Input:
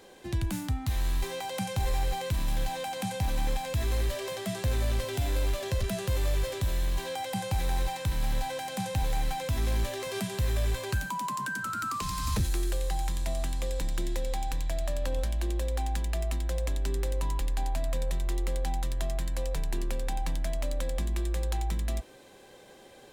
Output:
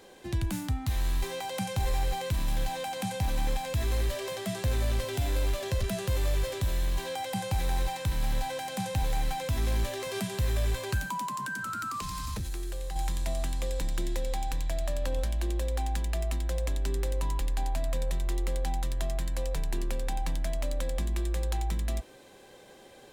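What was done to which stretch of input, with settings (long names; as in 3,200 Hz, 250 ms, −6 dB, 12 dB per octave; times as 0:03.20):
0:11.23–0:12.96: downward compressor, threshold −31 dBFS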